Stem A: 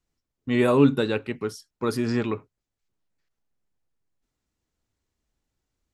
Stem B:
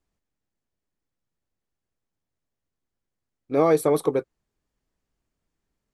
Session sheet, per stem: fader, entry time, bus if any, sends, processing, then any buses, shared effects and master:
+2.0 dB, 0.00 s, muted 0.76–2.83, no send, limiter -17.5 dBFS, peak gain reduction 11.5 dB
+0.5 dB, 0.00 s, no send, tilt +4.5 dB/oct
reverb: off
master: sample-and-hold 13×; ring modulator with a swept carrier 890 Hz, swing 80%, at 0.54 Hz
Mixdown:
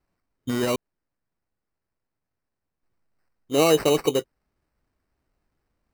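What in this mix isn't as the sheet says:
stem B: missing tilt +4.5 dB/oct; master: missing ring modulator with a swept carrier 890 Hz, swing 80%, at 0.54 Hz

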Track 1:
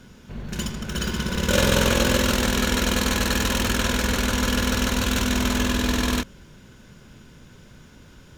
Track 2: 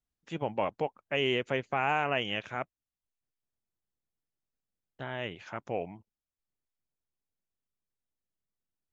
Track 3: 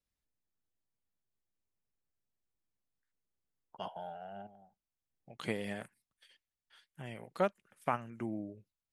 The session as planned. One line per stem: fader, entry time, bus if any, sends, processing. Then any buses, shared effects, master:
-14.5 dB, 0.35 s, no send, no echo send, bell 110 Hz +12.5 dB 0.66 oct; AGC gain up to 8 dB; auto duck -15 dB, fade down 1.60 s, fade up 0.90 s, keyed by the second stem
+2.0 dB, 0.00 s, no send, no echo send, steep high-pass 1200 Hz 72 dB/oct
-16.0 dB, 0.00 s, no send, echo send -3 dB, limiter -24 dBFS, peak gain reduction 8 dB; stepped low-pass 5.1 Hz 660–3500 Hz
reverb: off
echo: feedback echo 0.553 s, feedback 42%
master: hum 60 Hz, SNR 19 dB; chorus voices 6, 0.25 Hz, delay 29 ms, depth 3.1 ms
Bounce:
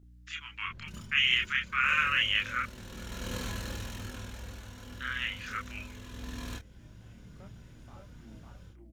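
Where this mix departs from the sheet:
stem 2 +2.0 dB -> +10.5 dB; stem 3: missing stepped low-pass 5.1 Hz 660–3500 Hz

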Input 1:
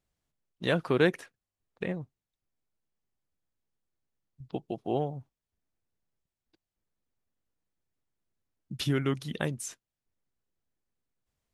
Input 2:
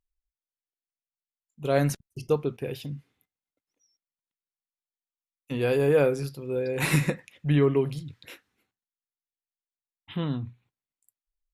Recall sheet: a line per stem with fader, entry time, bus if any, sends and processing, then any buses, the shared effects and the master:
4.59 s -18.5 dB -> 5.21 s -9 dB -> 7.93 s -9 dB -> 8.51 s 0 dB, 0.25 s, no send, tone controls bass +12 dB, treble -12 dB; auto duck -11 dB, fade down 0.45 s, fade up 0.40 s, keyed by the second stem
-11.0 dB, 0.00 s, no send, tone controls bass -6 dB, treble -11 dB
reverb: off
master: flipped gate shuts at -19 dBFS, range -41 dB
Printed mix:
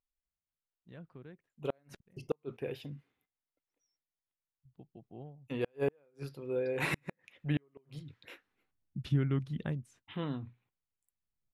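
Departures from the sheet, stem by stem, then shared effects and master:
stem 1 -18.5 dB -> -28.0 dB; stem 2 -11.0 dB -> -4.0 dB

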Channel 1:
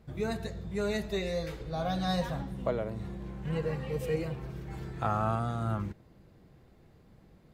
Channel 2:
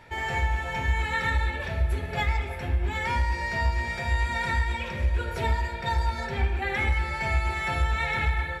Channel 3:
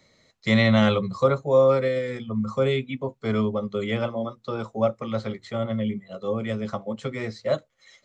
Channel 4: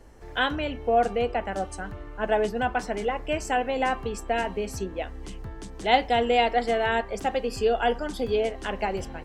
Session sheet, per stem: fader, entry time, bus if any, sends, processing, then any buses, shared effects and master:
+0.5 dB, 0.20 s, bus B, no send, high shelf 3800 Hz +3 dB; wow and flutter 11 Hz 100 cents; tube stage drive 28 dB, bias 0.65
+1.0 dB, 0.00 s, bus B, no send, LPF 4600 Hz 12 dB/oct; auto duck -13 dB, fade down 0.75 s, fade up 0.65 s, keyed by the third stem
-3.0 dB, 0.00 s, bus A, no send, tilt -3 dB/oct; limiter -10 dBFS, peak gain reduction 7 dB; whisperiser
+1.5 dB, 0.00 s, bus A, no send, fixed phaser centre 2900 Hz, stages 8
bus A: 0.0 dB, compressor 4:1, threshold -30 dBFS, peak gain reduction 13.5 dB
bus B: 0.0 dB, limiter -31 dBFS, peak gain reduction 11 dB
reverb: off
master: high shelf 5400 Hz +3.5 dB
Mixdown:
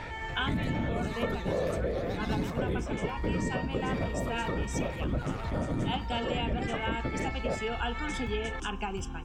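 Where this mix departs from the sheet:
stem 1 +0.5 dB -> +6.5 dB; stem 2 +1.0 dB -> +12.0 dB

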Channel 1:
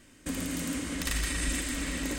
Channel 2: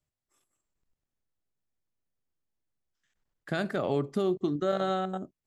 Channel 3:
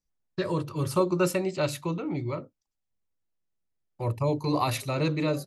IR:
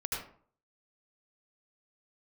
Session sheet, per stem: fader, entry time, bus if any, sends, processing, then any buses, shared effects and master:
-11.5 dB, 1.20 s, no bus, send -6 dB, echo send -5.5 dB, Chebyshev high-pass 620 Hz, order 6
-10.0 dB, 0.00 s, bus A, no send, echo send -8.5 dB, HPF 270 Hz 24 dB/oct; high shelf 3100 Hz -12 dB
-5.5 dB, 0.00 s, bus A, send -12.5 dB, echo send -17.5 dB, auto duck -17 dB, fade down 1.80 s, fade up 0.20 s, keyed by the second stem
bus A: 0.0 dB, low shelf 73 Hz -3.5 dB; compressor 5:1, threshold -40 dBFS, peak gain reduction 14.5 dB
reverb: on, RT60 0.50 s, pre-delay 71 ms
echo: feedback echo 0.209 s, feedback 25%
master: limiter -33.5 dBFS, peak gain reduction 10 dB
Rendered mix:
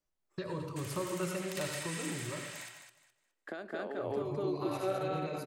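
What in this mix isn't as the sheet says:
stem 1: entry 1.20 s -> 0.50 s; stem 2 -10.0 dB -> +1.5 dB; master: missing limiter -33.5 dBFS, peak gain reduction 10 dB

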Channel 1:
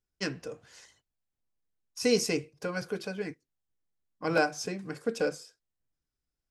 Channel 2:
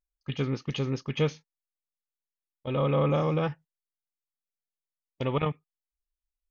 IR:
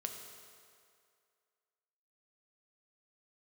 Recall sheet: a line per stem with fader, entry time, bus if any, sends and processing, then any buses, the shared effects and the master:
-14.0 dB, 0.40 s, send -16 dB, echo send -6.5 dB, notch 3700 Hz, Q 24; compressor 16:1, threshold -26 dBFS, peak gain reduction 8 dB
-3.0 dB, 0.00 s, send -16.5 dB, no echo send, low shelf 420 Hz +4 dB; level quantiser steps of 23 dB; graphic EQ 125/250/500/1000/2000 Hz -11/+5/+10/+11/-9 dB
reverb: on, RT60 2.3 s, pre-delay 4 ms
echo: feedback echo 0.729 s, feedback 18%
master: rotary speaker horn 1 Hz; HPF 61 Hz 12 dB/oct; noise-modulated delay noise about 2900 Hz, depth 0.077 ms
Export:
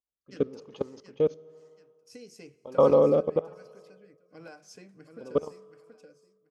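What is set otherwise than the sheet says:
stem 1: entry 0.40 s -> 0.10 s; master: missing noise-modulated delay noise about 2900 Hz, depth 0.077 ms

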